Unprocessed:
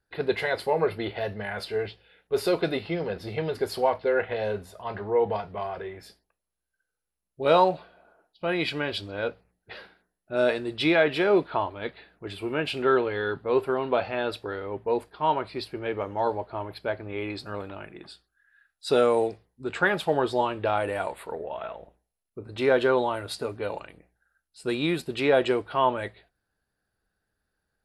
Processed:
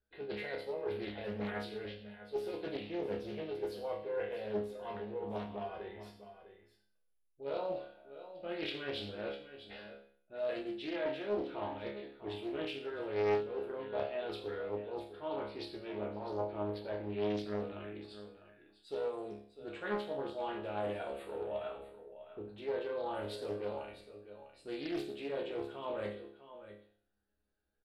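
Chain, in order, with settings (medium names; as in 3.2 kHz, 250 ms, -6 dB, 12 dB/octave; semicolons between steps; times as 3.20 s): ten-band graphic EQ 125 Hz -11 dB, 1 kHz -9 dB, 2 kHz -7 dB, 4 kHz -4 dB; reverse; compression 8:1, threshold -34 dBFS, peak gain reduction 15.5 dB; reverse; resonant high shelf 4.5 kHz -9 dB, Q 1.5; chord resonator C#2 fifth, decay 0.53 s; on a send: delay 651 ms -13 dB; on the sum: loudspeaker Doppler distortion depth 0.45 ms; trim +11.5 dB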